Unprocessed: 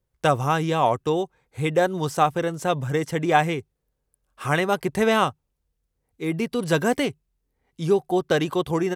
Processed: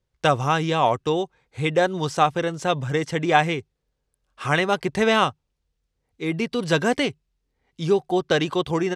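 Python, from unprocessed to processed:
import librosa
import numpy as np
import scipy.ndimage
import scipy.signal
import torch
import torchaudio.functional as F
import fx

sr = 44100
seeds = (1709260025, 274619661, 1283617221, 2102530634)

y = scipy.signal.sosfilt(scipy.signal.butter(2, 4700.0, 'lowpass', fs=sr, output='sos'), x)
y = fx.high_shelf(y, sr, hz=3100.0, db=10.0)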